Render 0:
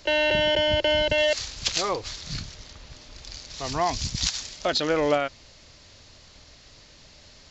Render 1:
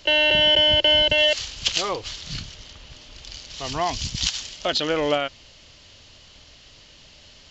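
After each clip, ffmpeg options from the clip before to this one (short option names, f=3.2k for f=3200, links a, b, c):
-af "equalizer=f=3k:w=4.1:g=10.5"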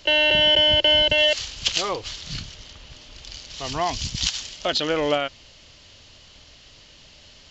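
-af anull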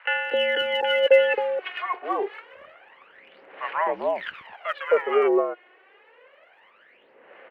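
-filter_complex "[0:a]acrossover=split=1100[a][b];[a]adelay=260[c];[c][b]amix=inputs=2:normalize=0,highpass=f=510:t=q:w=0.5412,highpass=f=510:t=q:w=1.307,lowpass=f=2.1k:t=q:w=0.5176,lowpass=f=2.1k:t=q:w=0.7071,lowpass=f=2.1k:t=q:w=1.932,afreqshift=-67,aphaser=in_gain=1:out_gain=1:delay=2.8:decay=0.71:speed=0.27:type=sinusoidal,volume=3dB"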